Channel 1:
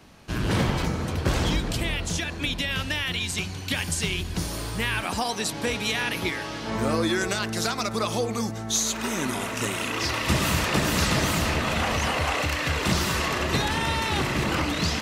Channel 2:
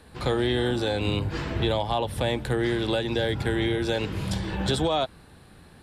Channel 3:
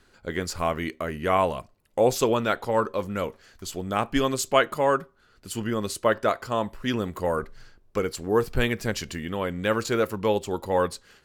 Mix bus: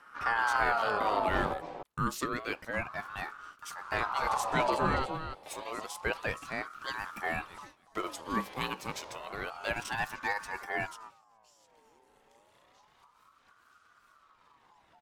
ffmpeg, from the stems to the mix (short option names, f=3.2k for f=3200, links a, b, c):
-filter_complex "[0:a]lowshelf=f=250:g=12,acompressor=threshold=-27dB:ratio=12,adelay=2450,volume=-14dB,asplit=2[a][b];[b]volume=-16.5dB[c];[1:a]tiltshelf=f=830:g=5.5,volume=-5.5dB,asplit=3[d][e][f];[d]atrim=end=1.54,asetpts=PTS-STARTPTS,afade=t=out:st=1.536:d=0.004:c=hsin[g];[e]atrim=start=1.54:end=3.92,asetpts=PTS-STARTPTS,volume=0[h];[f]atrim=start=3.92,asetpts=PTS-STARTPTS,afade=t=in:d=0.004:c=hsin[i];[g][h][i]concat=n=3:v=0:a=1,asplit=2[j][k];[k]volume=-7.5dB[l];[2:a]highpass=f=340:p=1,dynaudnorm=f=150:g=7:m=10.5dB,volume=-14dB,asplit=2[m][n];[n]apad=whole_len=770225[o];[a][o]sidechaingate=range=-33dB:threshold=-58dB:ratio=16:detection=peak[p];[c][l]amix=inputs=2:normalize=0,aecho=0:1:290:1[q];[p][j][m][q]amix=inputs=4:normalize=0,aeval=exprs='val(0)*sin(2*PI*990*n/s+990*0.35/0.29*sin(2*PI*0.29*n/s))':c=same"